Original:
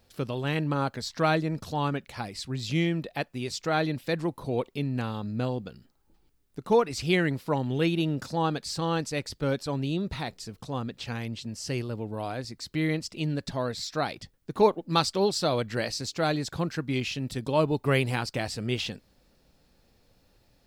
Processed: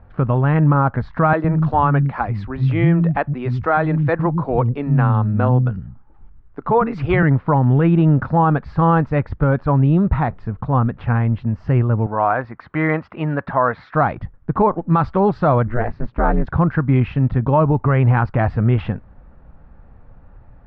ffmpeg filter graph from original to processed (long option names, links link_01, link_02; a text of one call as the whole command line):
ffmpeg -i in.wav -filter_complex "[0:a]asettb=1/sr,asplit=3[link_01][link_02][link_03];[link_01]atrim=end=1.334[link_04];[link_02]atrim=start=1.33:end=7.23,asetpts=PTS-STARTPTS,afade=type=in:duration=0.004:curve=qsin,afade=type=out:start_time=5.896:duration=0.004:curve=qsin,aemphasis=mode=production:type=50fm,asoftclip=type=hard:threshold=-12.5dB,acrossover=split=240[link_05][link_06];[link_05]adelay=110[link_07];[link_07][link_06]amix=inputs=2:normalize=0,atrim=end_sample=260190[link_08];[link_03]atrim=start=7.226[link_09];[link_04][link_08]acrossfade=duration=0.004:curve1=hsin:curve2=qsin[link_10];[link_10][link_09]acrossfade=duration=0.004:curve1=qsin:curve2=hsin,asettb=1/sr,asplit=3[link_11][link_12][link_13];[link_11]atrim=end=12.064[link_14];[link_12]atrim=start=12.06:end=13.95,asetpts=PTS-STARTPTS,afade=type=in:duration=0.004:curve=qsin,afade=type=out:start_time=1.886:duration=0.004:curve=qsin,bandpass=frequency=1400:width_type=q:width=0.64,acontrast=49[link_15];[link_13]atrim=start=13.946[link_16];[link_14][link_15]acrossfade=duration=0.004:curve1=hsin:curve2=qsin[link_17];[link_17][link_16]acrossfade=duration=0.004:curve1=qsin:curve2=hsin,asettb=1/sr,asplit=3[link_18][link_19][link_20];[link_18]atrim=end=15.674[link_21];[link_19]atrim=start=15.67:end=16.47,asetpts=PTS-STARTPTS,afade=type=in:duration=0.004:curve=qsin,afade=type=out:start_time=0.796:duration=0.004:curve=qsin,lowpass=10000,highshelf=frequency=2800:gain=-11.5,aeval=exprs='val(0)*sin(2*PI*120*n/s)':channel_layout=same[link_22];[link_20]atrim=start=16.466[link_23];[link_21][link_22]acrossfade=duration=0.004:curve1=hsin:curve2=qsin[link_24];[link_24][link_23]acrossfade=duration=0.004:curve1=qsin:curve2=hsin,lowpass=frequency=1300:width=0.5412,lowpass=frequency=1300:width=1.3066,equalizer=frequency=390:width_type=o:width=2.5:gain=-14.5,alimiter=level_in=29dB:limit=-1dB:release=50:level=0:latency=1,volume=-5dB" out.wav